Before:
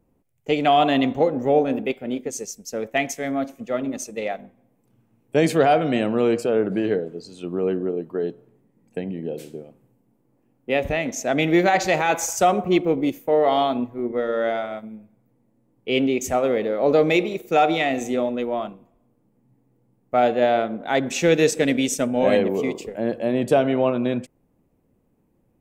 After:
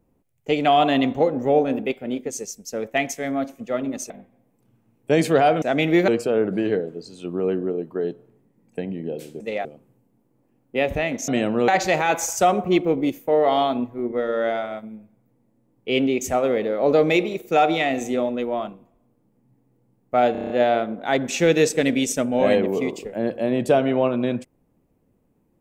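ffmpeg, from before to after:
-filter_complex "[0:a]asplit=14[s0][s1][s2][s3][s4][s5][s6][s7][s8][s9][s10][s11][s12][s13];[s0]atrim=end=4.102[s14];[s1]atrim=start=4.348:end=5.872[s15];[s2]atrim=start=11.218:end=11.682[s16];[s3]atrim=start=6.268:end=9.592[s17];[s4]atrim=start=4.098:end=4.352[s18];[s5]atrim=start=9.588:end=11.222[s19];[s6]atrim=start=5.868:end=6.272[s20];[s7]atrim=start=11.678:end=20.352[s21];[s8]atrim=start=20.318:end=20.352[s22];[s9]atrim=start=20.318:end=20.352[s23];[s10]atrim=start=20.318:end=20.352[s24];[s11]atrim=start=20.318:end=20.352[s25];[s12]atrim=start=20.318:end=20.352[s26];[s13]atrim=start=20.318[s27];[s14][s15]acrossfade=d=0.004:c1=hsin:c2=hsin[s28];[s28][s16]acrossfade=d=0.004:c1=hsin:c2=hsin[s29];[s29][s17]acrossfade=d=0.004:c1=hsin:c2=hsin[s30];[s30][s18]acrossfade=d=0.004:c1=hsin:c2=hsin[s31];[s31][s19]acrossfade=d=0.004:c1=hsin:c2=hsin[s32];[s32][s20]acrossfade=d=0.004:c1=hsin:c2=hsin[s33];[s33][s21]acrossfade=d=0.004:c1=hsin:c2=hsin[s34];[s34][s22]acrossfade=d=0.004:c1=hsin:c2=hsin[s35];[s35][s23]acrossfade=d=0.004:c1=hsin:c2=hsin[s36];[s36][s24]acrossfade=d=0.004:c1=hsin:c2=hsin[s37];[s37][s25]acrossfade=d=0.004:c1=hsin:c2=hsin[s38];[s38][s26]acrossfade=d=0.004:c1=hsin:c2=hsin[s39];[s39][s27]acrossfade=d=0.004:c1=hsin:c2=hsin"

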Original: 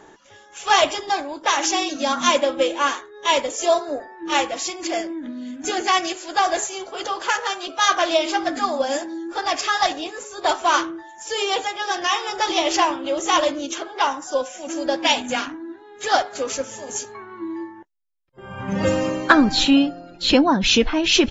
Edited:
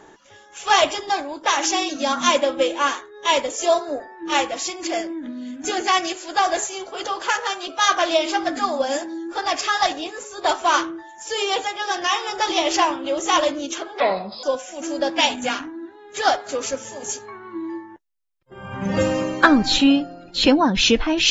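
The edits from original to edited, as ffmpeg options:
-filter_complex "[0:a]asplit=3[s0][s1][s2];[s0]atrim=end=14.004[s3];[s1]atrim=start=14:end=14.3,asetpts=PTS-STARTPTS,asetrate=30429,aresample=44100[s4];[s2]atrim=start=14.296[s5];[s3][s4]acrossfade=d=0.004:c1=hsin:c2=hsin[s6];[s6][s5]acrossfade=d=0.004:c1=hsin:c2=hsin"

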